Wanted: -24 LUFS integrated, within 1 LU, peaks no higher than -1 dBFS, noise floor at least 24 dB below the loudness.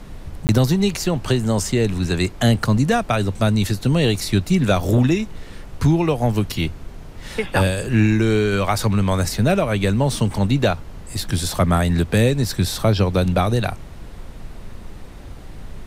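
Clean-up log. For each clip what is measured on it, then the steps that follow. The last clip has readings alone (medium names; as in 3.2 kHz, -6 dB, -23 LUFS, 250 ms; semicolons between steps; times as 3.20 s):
dropouts 1; longest dropout 19 ms; noise floor -37 dBFS; noise floor target -44 dBFS; loudness -19.5 LUFS; peak level -6.0 dBFS; loudness target -24.0 LUFS
-> interpolate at 0.47 s, 19 ms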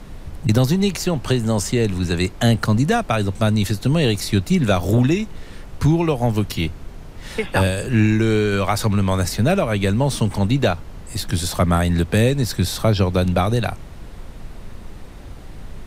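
dropouts 0; noise floor -37 dBFS; noise floor target -44 dBFS
-> noise print and reduce 7 dB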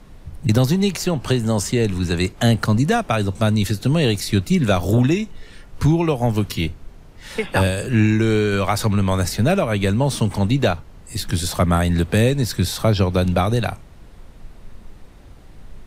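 noise floor -43 dBFS; noise floor target -44 dBFS
-> noise print and reduce 6 dB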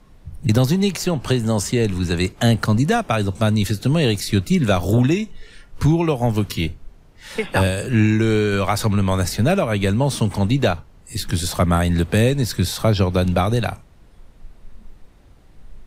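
noise floor -48 dBFS; loudness -19.5 LUFS; peak level -6.0 dBFS; loudness target -24.0 LUFS
-> trim -4.5 dB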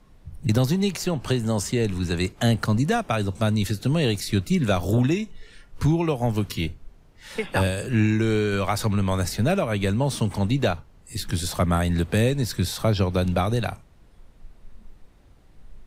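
loudness -24.0 LUFS; peak level -10.5 dBFS; noise floor -53 dBFS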